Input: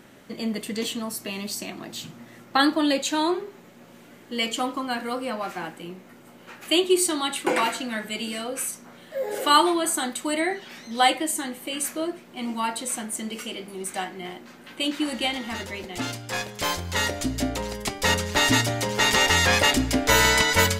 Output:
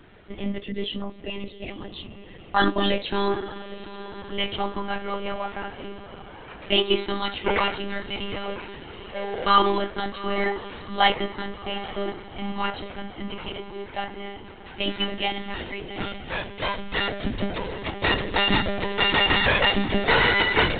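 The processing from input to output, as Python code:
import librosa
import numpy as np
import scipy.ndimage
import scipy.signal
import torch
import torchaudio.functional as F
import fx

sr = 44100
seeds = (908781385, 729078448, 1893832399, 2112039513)

y = fx.envelope_sharpen(x, sr, power=1.5, at=(0.61, 2.79))
y = fx.echo_diffused(y, sr, ms=822, feedback_pct=56, wet_db=-14.0)
y = fx.lpc_monotone(y, sr, seeds[0], pitch_hz=200.0, order=16)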